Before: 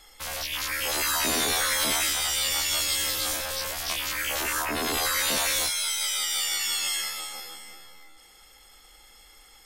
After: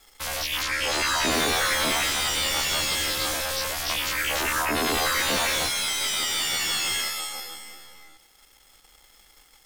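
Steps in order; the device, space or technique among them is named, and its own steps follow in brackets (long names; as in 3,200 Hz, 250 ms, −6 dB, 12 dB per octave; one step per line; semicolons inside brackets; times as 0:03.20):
0:00.63–0:01.32: low-pass filter 7,400 Hz 12 dB per octave
early transistor amplifier (dead-zone distortion −54 dBFS; slew-rate limiting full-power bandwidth 180 Hz)
level +4.5 dB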